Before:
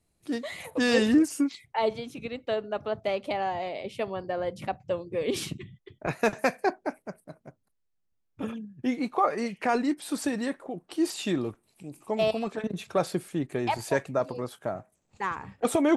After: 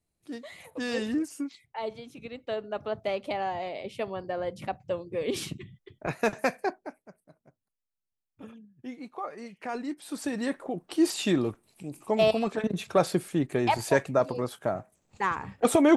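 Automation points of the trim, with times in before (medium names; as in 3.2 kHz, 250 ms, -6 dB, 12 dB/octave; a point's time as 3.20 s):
1.86 s -8 dB
2.84 s -1.5 dB
6.58 s -1.5 dB
7.02 s -12 dB
9.38 s -12 dB
10.20 s -4.5 dB
10.60 s +3 dB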